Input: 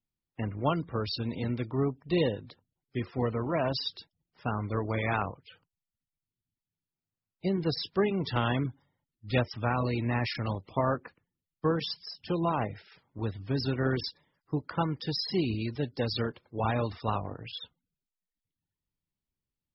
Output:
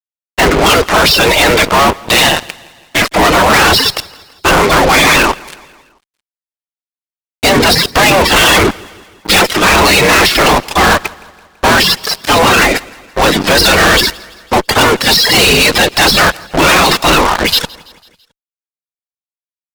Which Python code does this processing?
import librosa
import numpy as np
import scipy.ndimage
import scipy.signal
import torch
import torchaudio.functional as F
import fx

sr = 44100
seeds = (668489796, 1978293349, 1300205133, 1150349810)

p1 = fx.spec_gate(x, sr, threshold_db=-15, keep='weak')
p2 = fx.ring_mod(p1, sr, carrier_hz=fx.line((1.99, 47.0), (3.04, 200.0)), at=(1.99, 3.04), fade=0.02)
p3 = fx.fuzz(p2, sr, gain_db=57.0, gate_db=-59.0)
p4 = p3 + fx.echo_feedback(p3, sr, ms=166, feedback_pct=54, wet_db=-23.5, dry=0)
y = p4 * librosa.db_to_amplitude(7.0)